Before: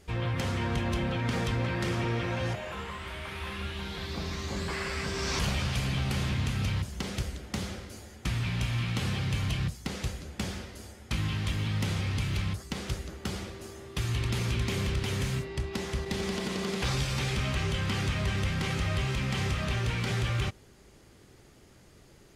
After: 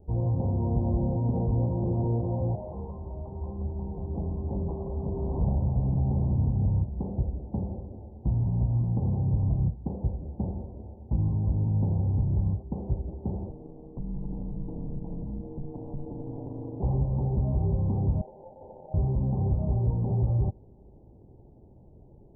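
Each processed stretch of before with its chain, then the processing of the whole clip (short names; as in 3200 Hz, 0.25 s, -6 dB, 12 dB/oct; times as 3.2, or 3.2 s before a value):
13.5–16.8 compressor 3:1, threshold -33 dBFS + ring modulator 74 Hz
18.21–18.94 median filter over 25 samples + ladder high-pass 480 Hz, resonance 65% + sample-rate reducer 1400 Hz
whole clip: steep low-pass 910 Hz 72 dB/oct; low shelf 220 Hz +6.5 dB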